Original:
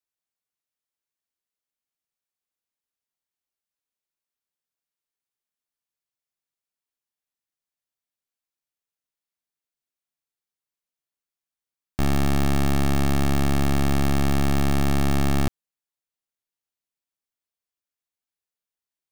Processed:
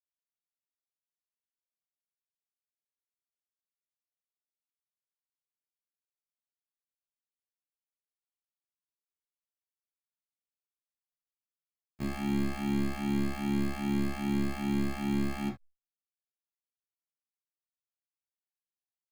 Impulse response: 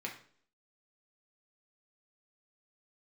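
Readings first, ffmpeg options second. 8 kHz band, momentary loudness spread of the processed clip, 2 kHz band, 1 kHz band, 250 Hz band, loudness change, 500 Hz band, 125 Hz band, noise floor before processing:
-14.5 dB, 6 LU, -9.0 dB, -11.5 dB, -5.0 dB, -8.5 dB, -10.0 dB, -14.0 dB, under -85 dBFS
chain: -filter_complex "[0:a]agate=range=-33dB:threshold=-13dB:ratio=3:detection=peak[a];[1:a]atrim=start_sample=2205,atrim=end_sample=3528[b];[a][b]afir=irnorm=-1:irlink=0,asplit=2[c][d];[d]adelay=11.9,afreqshift=-2.5[e];[c][e]amix=inputs=2:normalize=1,volume=4.5dB"

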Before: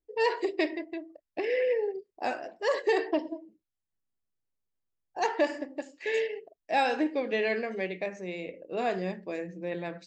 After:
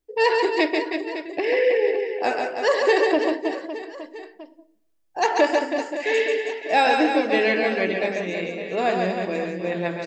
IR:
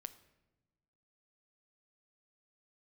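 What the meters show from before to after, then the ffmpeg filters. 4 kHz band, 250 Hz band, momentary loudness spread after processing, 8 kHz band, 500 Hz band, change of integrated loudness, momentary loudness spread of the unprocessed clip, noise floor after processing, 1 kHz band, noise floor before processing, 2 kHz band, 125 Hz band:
+10.5 dB, +8.5 dB, 10 LU, +10.5 dB, +8.5 dB, +9.0 dB, 12 LU, -62 dBFS, +9.5 dB, under -85 dBFS, +10.0 dB, n/a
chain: -filter_complex "[0:a]aecho=1:1:140|322|558.6|866.2|1266:0.631|0.398|0.251|0.158|0.1,asplit=2[a][b];[1:a]atrim=start_sample=2205,lowshelf=f=500:g=-10.5[c];[b][c]afir=irnorm=-1:irlink=0,volume=0dB[d];[a][d]amix=inputs=2:normalize=0,volume=4.5dB"

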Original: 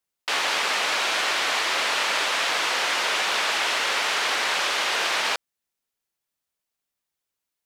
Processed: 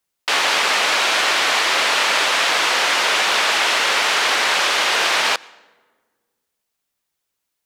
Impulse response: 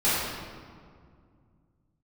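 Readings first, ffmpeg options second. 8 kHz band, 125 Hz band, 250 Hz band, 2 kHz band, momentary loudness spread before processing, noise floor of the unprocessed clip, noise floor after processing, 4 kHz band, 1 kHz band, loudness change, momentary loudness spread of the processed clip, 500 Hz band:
+6.5 dB, n/a, +6.5 dB, +6.5 dB, 1 LU, -85 dBFS, -78 dBFS, +6.5 dB, +6.5 dB, +6.5 dB, 1 LU, +6.5 dB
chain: -filter_complex "[0:a]asplit=2[a][b];[1:a]atrim=start_sample=2205,asetrate=66150,aresample=44100,adelay=88[c];[b][c]afir=irnorm=-1:irlink=0,volume=-36dB[d];[a][d]amix=inputs=2:normalize=0,volume=6.5dB"

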